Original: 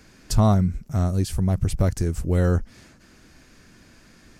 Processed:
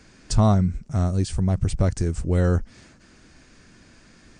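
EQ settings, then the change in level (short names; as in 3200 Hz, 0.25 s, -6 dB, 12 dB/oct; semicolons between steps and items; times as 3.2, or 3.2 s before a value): brick-wall FIR low-pass 9600 Hz; 0.0 dB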